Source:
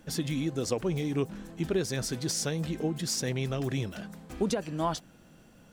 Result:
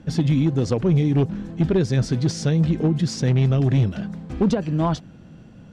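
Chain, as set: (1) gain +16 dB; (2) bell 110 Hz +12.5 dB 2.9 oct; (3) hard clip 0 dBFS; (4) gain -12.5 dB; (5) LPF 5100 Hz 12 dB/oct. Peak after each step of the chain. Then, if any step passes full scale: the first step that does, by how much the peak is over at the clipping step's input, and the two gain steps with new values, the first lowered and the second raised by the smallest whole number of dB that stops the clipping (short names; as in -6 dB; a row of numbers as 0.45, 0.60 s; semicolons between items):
-0.5, +5.5, 0.0, -12.5, -12.5 dBFS; step 2, 5.5 dB; step 1 +10 dB, step 4 -6.5 dB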